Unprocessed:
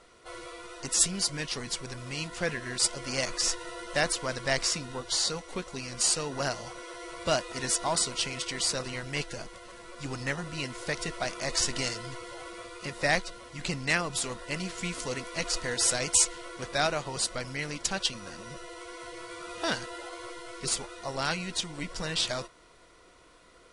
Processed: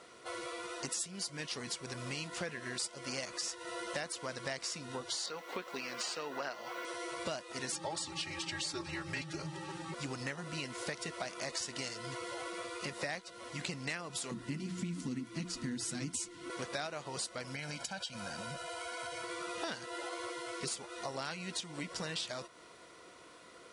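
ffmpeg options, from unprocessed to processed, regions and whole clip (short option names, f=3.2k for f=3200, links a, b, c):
-filter_complex "[0:a]asettb=1/sr,asplit=3[a][b][c];[a]atrim=end=5.264[d];[b]atrim=start=5.26:end=6.85,asetpts=PTS-STARTPTS,afade=t=in:d=0.004:c=qsin,afade=t=out:st=1.586:d=0.004:c=qsin,highpass=280,lowpass=4.2k,equalizer=f=1.6k:t=o:w=2:g=4,acrusher=bits=8:mix=0:aa=0.5[e];[c]atrim=start=6.846[f];[d][e]acrossfade=d=0.004:c1=hsin:c2=qsin[g];[g][f]acrossfade=d=0.004:c1=qsin:c2=hsin,asettb=1/sr,asplit=3[h][i][j];[h]atrim=end=7.724[k];[i]atrim=start=7.72:end=9.94,asetpts=PTS-STARTPTS,afade=t=in:d=0.004:c=qsin,afade=t=out:st=2.216:d=0.004:c=qsin,highshelf=f=8.4k:g=-9,aecho=1:1:3.9:0.86,atrim=end_sample=97902,afreqshift=-170[l];[j]atrim=start=9.936[m];[k][l]acrossfade=d=0.004:c1=hsin:c2=qsin[n];[n][m]acrossfade=d=0.004:c1=qsin:c2=hsin,asettb=1/sr,asplit=3[o][p][q];[o]atrim=end=14.314[r];[p]atrim=start=14.31:end=16.5,asetpts=PTS-STARTPTS,afade=t=in:d=0.004:c=qsin,afade=t=out:st=2.186:d=0.004:c=qsin,lowshelf=f=370:t=q:w=3:g=12.5,bandreject=f=60:t=h:w=6,bandreject=f=120:t=h:w=6,bandreject=f=180:t=h:w=6,flanger=delay=5.4:depth=3.5:regen=-32:speed=1.8:shape=triangular[s];[q]atrim=start=16.496[t];[r][s]acrossfade=d=0.004:c1=hsin:c2=qsin[u];[u][t]acrossfade=d=0.004:c1=qsin:c2=hsin,asettb=1/sr,asplit=3[v][w][x];[v]atrim=end=17.554[y];[w]atrim=start=17.55:end=19.24,asetpts=PTS-STARTPTS,afade=t=in:d=0.004:c=qsin,afade=t=out:st=1.686:d=0.004:c=qsin,aecho=1:1:1.3:0.73,atrim=end_sample=74529,acompressor=threshold=-38dB:ratio=3:attack=3.2:release=140:knee=1:detection=peak[z];[x]atrim=start=19.236[aa];[y][z]acrossfade=d=0.004:c1=hsin:c2=qsin[ab];[ab][aa]acrossfade=d=0.004:c1=qsin:c2=hsin,highpass=130,acompressor=threshold=-39dB:ratio=6,volume=2dB"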